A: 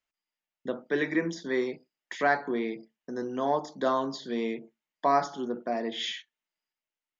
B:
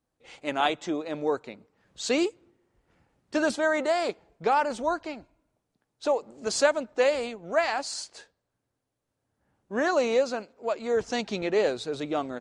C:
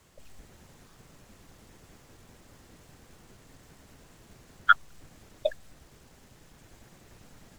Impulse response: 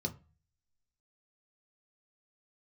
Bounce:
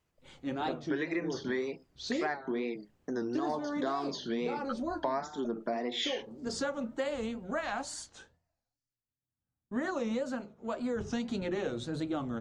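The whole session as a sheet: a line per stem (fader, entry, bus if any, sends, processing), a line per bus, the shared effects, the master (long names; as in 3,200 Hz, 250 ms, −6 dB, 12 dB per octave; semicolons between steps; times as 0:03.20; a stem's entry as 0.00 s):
+2.5 dB, 0.00 s, no send, notch filter 530 Hz
−3.5 dB, 0.00 s, send −6 dB, noise gate with hold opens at −53 dBFS; low-shelf EQ 95 Hz +11 dB; mains-hum notches 50/100/150 Hz; automatic ducking −14 dB, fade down 0.40 s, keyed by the first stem
−17.0 dB, 0.00 s, no send, high-shelf EQ 2,000 Hz −10 dB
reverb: on, RT60 0.35 s, pre-delay 3 ms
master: tape wow and flutter 120 cents; downward compressor 6 to 1, threshold −30 dBFS, peak gain reduction 13 dB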